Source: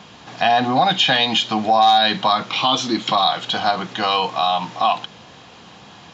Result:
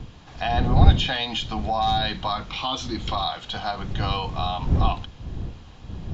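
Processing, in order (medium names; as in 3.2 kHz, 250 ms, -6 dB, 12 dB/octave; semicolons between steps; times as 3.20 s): wind noise 110 Hz -15 dBFS; trim -9.5 dB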